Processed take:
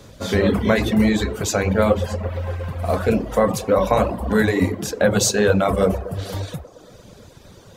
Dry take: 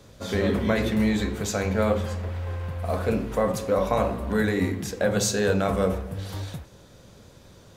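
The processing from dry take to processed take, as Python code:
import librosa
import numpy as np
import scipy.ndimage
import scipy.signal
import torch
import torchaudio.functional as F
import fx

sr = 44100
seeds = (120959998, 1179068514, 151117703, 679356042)

p1 = x + fx.echo_wet_bandpass(x, sr, ms=117, feedback_pct=71, hz=560.0, wet_db=-9.0, dry=0)
p2 = fx.dereverb_blind(p1, sr, rt60_s=0.81)
y = p2 * 10.0 ** (7.0 / 20.0)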